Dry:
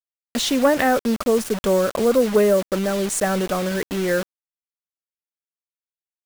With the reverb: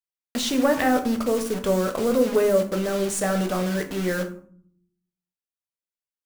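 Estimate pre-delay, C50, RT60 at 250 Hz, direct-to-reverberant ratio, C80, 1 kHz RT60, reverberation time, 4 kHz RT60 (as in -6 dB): 12 ms, 11.5 dB, 0.90 s, 5.0 dB, 15.5 dB, 0.55 s, 0.60 s, 0.30 s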